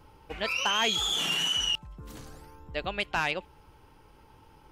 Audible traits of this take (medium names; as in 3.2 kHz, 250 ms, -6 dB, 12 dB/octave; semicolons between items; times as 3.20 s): noise floor -58 dBFS; spectral tilt -1.0 dB/octave